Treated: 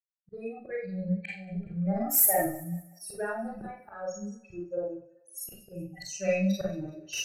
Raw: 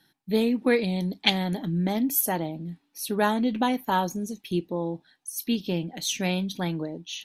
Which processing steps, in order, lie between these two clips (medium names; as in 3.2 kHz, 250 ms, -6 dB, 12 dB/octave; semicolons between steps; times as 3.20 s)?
expander on every frequency bin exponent 3; recorder AGC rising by 32 dB/s; level-controlled noise filter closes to 1.7 kHz, open at -21 dBFS; 4.78–5.57 s: frequency weighting A; slow attack 779 ms; saturation -25.5 dBFS, distortion -15 dB; static phaser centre 960 Hz, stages 6; thinning echo 190 ms, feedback 41%, high-pass 320 Hz, level -20.5 dB; Schroeder reverb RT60 0.37 s, combs from 31 ms, DRR -5 dB; trim +6.5 dB